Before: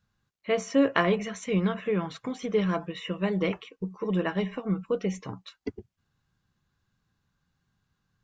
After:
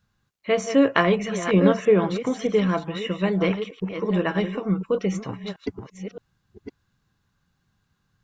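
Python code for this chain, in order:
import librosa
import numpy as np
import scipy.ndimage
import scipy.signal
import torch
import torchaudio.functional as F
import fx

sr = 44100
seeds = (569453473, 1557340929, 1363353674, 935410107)

y = fx.reverse_delay(x, sr, ms=618, wet_db=-9.5)
y = fx.dynamic_eq(y, sr, hz=470.0, q=0.79, threshold_db=-39.0, ratio=4.0, max_db=7, at=(1.53, 2.48))
y = y * 10.0 ** (4.5 / 20.0)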